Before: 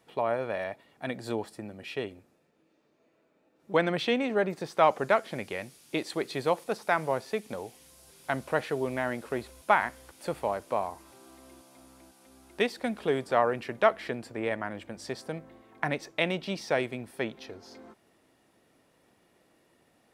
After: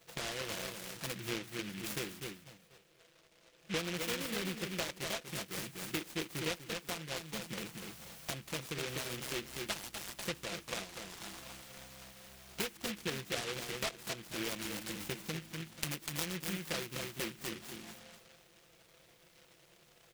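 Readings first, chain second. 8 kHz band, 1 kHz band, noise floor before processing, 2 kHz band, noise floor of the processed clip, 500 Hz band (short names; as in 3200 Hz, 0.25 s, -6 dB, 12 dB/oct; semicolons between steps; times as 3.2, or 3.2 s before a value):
+8.0 dB, -16.5 dB, -68 dBFS, -8.0 dB, -65 dBFS, -14.5 dB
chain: comb 5.9 ms, depth 72%; on a send: feedback echo 0.245 s, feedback 30%, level -7 dB; on the sum: compressor 5:1, threshold -37 dBFS, peak gain reduction 20.5 dB; envelope phaser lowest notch 240 Hz, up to 1400 Hz, full sweep at -33.5 dBFS; noise-modulated delay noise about 2300 Hz, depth 0.31 ms; gain +3 dB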